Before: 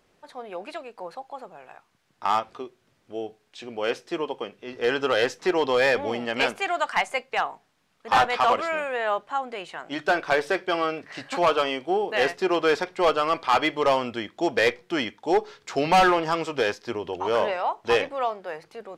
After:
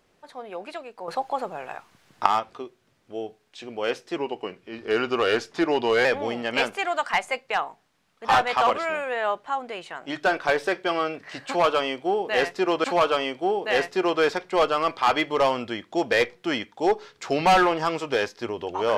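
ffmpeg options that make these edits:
ffmpeg -i in.wav -filter_complex "[0:a]asplit=6[link_01][link_02][link_03][link_04][link_05][link_06];[link_01]atrim=end=1.082[link_07];[link_02]atrim=start=1.078:end=2.262,asetpts=PTS-STARTPTS,volume=10.5dB[link_08];[link_03]atrim=start=2.258:end=4.164[link_09];[link_04]atrim=start=4.16:end=5.88,asetpts=PTS-STARTPTS,asetrate=40131,aresample=44100[link_10];[link_05]atrim=start=5.876:end=12.672[link_11];[link_06]atrim=start=11.298[link_12];[link_07][link_08]acrossfade=duration=0.004:curve1=hsin:curve2=hsin[link_13];[link_13][link_09]acrossfade=duration=0.004:curve1=hsin:curve2=hsin[link_14];[link_14][link_10]acrossfade=duration=0.004:curve1=hsin:curve2=hsin[link_15];[link_15][link_11]acrossfade=duration=0.004:curve1=hsin:curve2=hsin[link_16];[link_16][link_12]acrossfade=duration=0.004:curve1=hsin:curve2=hsin" out.wav

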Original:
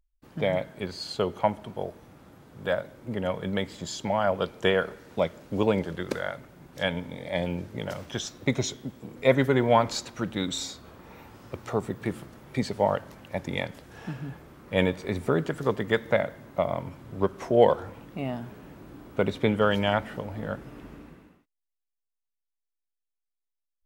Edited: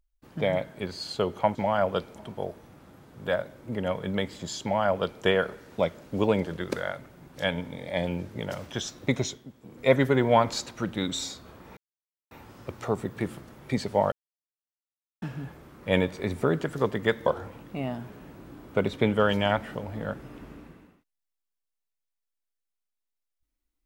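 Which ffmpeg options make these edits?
ffmpeg -i in.wav -filter_complex "[0:a]asplit=9[link_01][link_02][link_03][link_04][link_05][link_06][link_07][link_08][link_09];[link_01]atrim=end=1.552[link_10];[link_02]atrim=start=4.008:end=4.622[link_11];[link_03]atrim=start=1.548:end=8.84,asetpts=PTS-STARTPTS,afade=type=out:start_time=7.022:duration=0.27:silence=0.354813[link_12];[link_04]atrim=start=8.84:end=9,asetpts=PTS-STARTPTS,volume=-9dB[link_13];[link_05]atrim=start=9:end=11.16,asetpts=PTS-STARTPTS,afade=type=in:duration=0.27:silence=0.354813,afade=type=out:start_time=2.156:duration=0.004:curve=hsin,apad=pad_dur=0.54[link_14];[link_06]atrim=start=11.16:end=12.97,asetpts=PTS-STARTPTS,afade=type=in:duration=0.004:curve=hsin,afade=type=out:start_time=1.806:duration=0.004:curve=hsin[link_15];[link_07]atrim=start=12.97:end=14.07,asetpts=PTS-STARTPTS,volume=0[link_16];[link_08]atrim=start=14.07:end=16.112,asetpts=PTS-STARTPTS,afade=type=in:duration=0.004:curve=hsin[link_17];[link_09]atrim=start=17.678[link_18];[link_10][link_11]acrossfade=duration=0.004:curve1=hsin:curve2=hsin[link_19];[link_12][link_13][link_14][link_15][link_16][link_17]concat=n=6:v=0:a=1[link_20];[link_19][link_20]acrossfade=duration=0.004:curve1=hsin:curve2=hsin[link_21];[link_21][link_18]acrossfade=duration=0.004:curve1=hsin:curve2=hsin" out.wav

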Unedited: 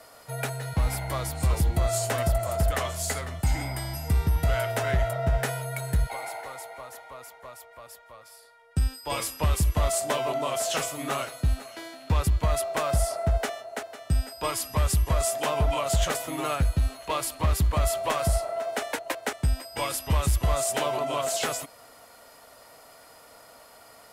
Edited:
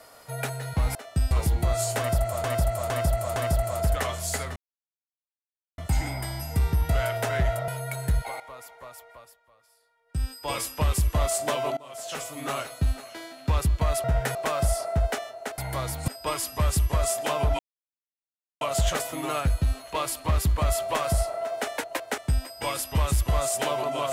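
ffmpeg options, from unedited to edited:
ffmpeg -i in.wav -filter_complex "[0:a]asplit=17[link_01][link_02][link_03][link_04][link_05][link_06][link_07][link_08][link_09][link_10][link_11][link_12][link_13][link_14][link_15][link_16][link_17];[link_01]atrim=end=0.952[link_18];[link_02]atrim=start=13.888:end=14.252[link_19];[link_03]atrim=start=1.448:end=2.582[link_20];[link_04]atrim=start=2.118:end=2.582[link_21];[link_05]atrim=start=2.118:end=2.582[link_22];[link_06]atrim=start=2.118:end=3.32,asetpts=PTS-STARTPTS,afade=type=out:start_time=1.198:duration=0.004:curve=hsin,apad=pad_dur=1.22[link_23];[link_07]atrim=start=3.32:end=5.222,asetpts=PTS-STARTPTS,afade=type=in:duration=0.004:curve=hsin[link_24];[link_08]atrim=start=5.528:end=6.252[link_25];[link_09]atrim=start=7.018:end=7.99,asetpts=PTS-STARTPTS,afade=type=out:start_time=0.702:duration=0.27:silence=0.223872[link_26];[link_10]atrim=start=7.99:end=8.67,asetpts=PTS-STARTPTS,volume=-13dB[link_27];[link_11]atrim=start=8.67:end=10.39,asetpts=PTS-STARTPTS,afade=type=in:duration=0.27:silence=0.223872,afade=type=out:start_time=1.716:duration=0.004:curve=hsin:silence=0.0749894[link_28];[link_12]atrim=start=10.39:end=12.662,asetpts=PTS-STARTPTS,afade=type=in:duration=0.86:silence=0.0749894[link_29];[link_13]atrim=start=5.218:end=5.532[link_30];[link_14]atrim=start=12.658:end=13.892[link_31];[link_15]atrim=start=0.948:end=1.452[link_32];[link_16]atrim=start=14.248:end=15.76,asetpts=PTS-STARTPTS,afade=type=out:start_time=1.508:duration=0.004:curve=hsin,apad=pad_dur=1.02[link_33];[link_17]atrim=start=15.76,asetpts=PTS-STARTPTS,afade=type=in:duration=0.004:curve=hsin[link_34];[link_18][link_19]acrossfade=duration=0.004:curve1=hsin:curve2=hsin[link_35];[link_35][link_20]acrossfade=duration=0.004:curve1=hsin:curve2=hsin[link_36];[link_36][link_21]acrossfade=duration=0.004:curve1=hsin:curve2=hsin[link_37];[link_37][link_22]acrossfade=duration=0.004:curve1=hsin:curve2=hsin[link_38];[link_23][link_24]concat=n=2:v=0:a=1[link_39];[link_38][link_39]acrossfade=duration=0.004:curve1=hsin:curve2=hsin[link_40];[link_40][link_25]acrossfade=duration=0.004:curve1=hsin:curve2=hsin[link_41];[link_26][link_27][link_28][link_29]concat=n=4:v=0:a=1[link_42];[link_41][link_42]acrossfade=duration=0.004:curve1=hsin:curve2=hsin[link_43];[link_43][link_30]acrossfade=duration=0.004:curve1=hsin:curve2=hsin[link_44];[link_44][link_31]acrossfade=duration=0.004:curve1=hsin:curve2=hsin[link_45];[link_45][link_32]acrossfade=duration=0.004:curve1=hsin:curve2=hsin[link_46];[link_33][link_34]concat=n=2:v=0:a=1[link_47];[link_46][link_47]acrossfade=duration=0.004:curve1=hsin:curve2=hsin" out.wav

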